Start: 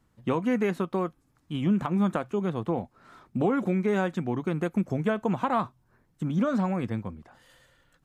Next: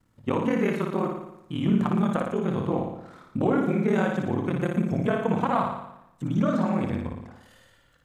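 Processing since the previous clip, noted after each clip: ring modulator 20 Hz; on a send: flutter echo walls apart 9.9 m, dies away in 0.83 s; on the sum: trim +3 dB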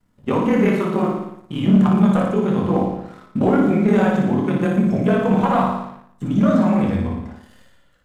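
simulated room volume 170 m³, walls furnished, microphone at 1.3 m; waveshaping leveller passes 1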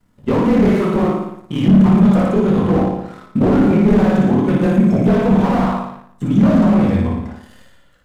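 slew-rate limiter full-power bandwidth 59 Hz; trim +5 dB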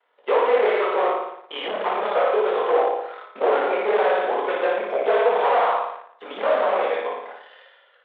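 Chebyshev band-pass 450–3500 Hz, order 4; trim +2.5 dB

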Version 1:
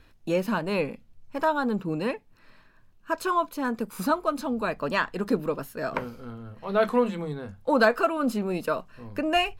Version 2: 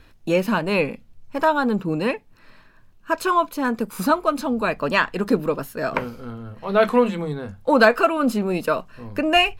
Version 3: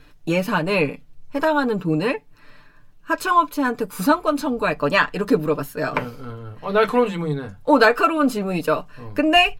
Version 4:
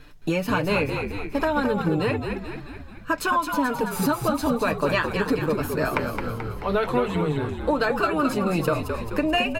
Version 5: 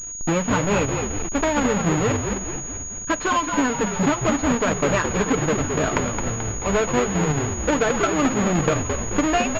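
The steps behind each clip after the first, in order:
dynamic bell 2.5 kHz, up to +4 dB, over -42 dBFS, Q 2.1; trim +5.5 dB
comb 6.8 ms
compression 5:1, threshold -22 dBFS, peak gain reduction 12 dB; frequency-shifting echo 217 ms, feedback 57%, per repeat -57 Hz, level -6 dB; trim +1.5 dB
square wave that keeps the level; class-D stage that switches slowly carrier 6.7 kHz; trim -1.5 dB

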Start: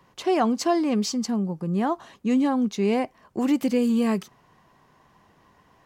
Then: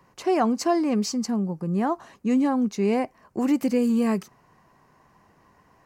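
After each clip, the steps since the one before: peaking EQ 3.4 kHz -9.5 dB 0.42 oct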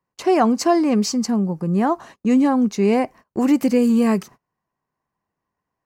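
gate -45 dBFS, range -28 dB; trim +5.5 dB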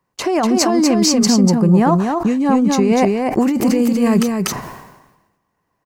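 compressor with a negative ratio -20 dBFS, ratio -1; on a send: delay 243 ms -4.5 dB; on the sum: decay stretcher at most 53 dB/s; trim +5.5 dB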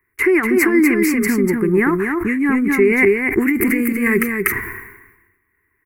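FFT filter 100 Hz 0 dB, 160 Hz -17 dB, 400 Hz +1 dB, 590 Hz -29 dB, 2.1 kHz +12 dB, 3.3 kHz -25 dB, 6.3 kHz -22 dB, 11 kHz +4 dB; trim +5.5 dB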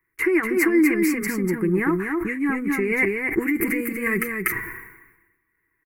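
comb 6.2 ms, depth 52%; trim -6.5 dB

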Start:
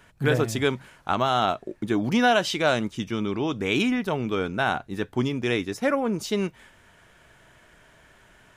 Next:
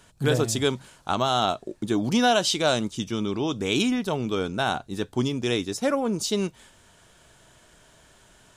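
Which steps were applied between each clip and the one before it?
ten-band graphic EQ 2 kHz -7 dB, 4 kHz +5 dB, 8 kHz +8 dB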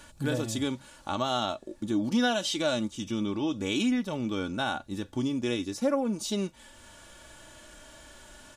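comb 3.5 ms, depth 45%; harmonic-percussive split harmonic +9 dB; compression 1.5:1, threshold -41 dBFS, peak gain reduction 12 dB; trim -2.5 dB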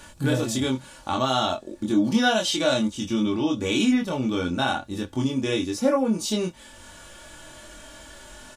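doubling 23 ms -2.5 dB; trim +4 dB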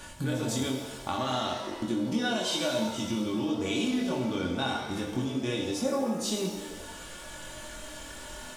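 compression 3:1, threshold -31 dBFS, peak gain reduction 11.5 dB; pitch-shifted reverb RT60 1.2 s, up +7 st, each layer -8 dB, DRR 2.5 dB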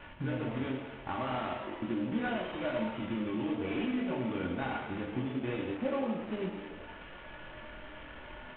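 CVSD coder 16 kbps; trim -3.5 dB

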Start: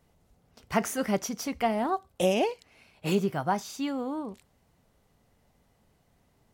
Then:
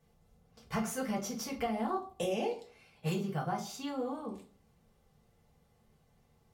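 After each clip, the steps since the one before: compression, threshold -27 dBFS, peak gain reduction 8 dB; comb of notches 320 Hz; reverberation RT60 0.45 s, pre-delay 4 ms, DRR -1 dB; trim -5.5 dB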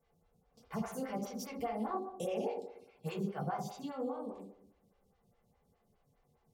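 on a send: filtered feedback delay 61 ms, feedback 64%, low-pass 1.3 kHz, level -5 dB; on the sum: lamp-driven phase shifter 4.9 Hz; trim -2.5 dB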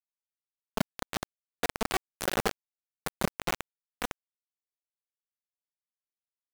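bit crusher 5-bit; trim +7 dB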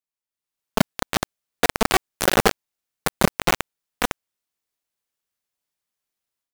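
level rider gain up to 11.5 dB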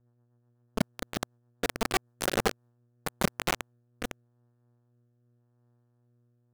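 mains buzz 120 Hz, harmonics 15, -60 dBFS -8 dB/octave; rotary cabinet horn 8 Hz, later 0.85 Hz, at 2.00 s; tape noise reduction on one side only decoder only; trim -7 dB

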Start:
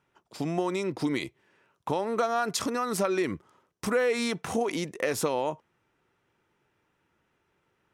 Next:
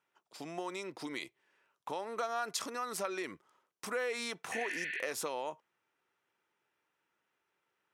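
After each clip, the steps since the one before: high-pass 730 Hz 6 dB/octave; spectral replace 4.54–4.99 s, 1.4–4.5 kHz after; trim -6 dB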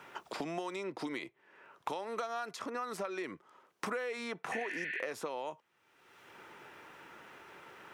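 treble shelf 4 kHz -11 dB; three bands compressed up and down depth 100%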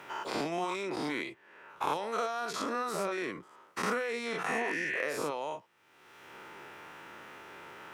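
every event in the spectrogram widened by 120 ms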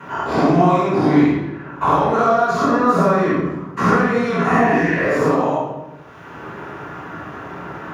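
tracing distortion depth 0.031 ms; reverberation RT60 1.1 s, pre-delay 3 ms, DRR -14.5 dB; trim -6 dB

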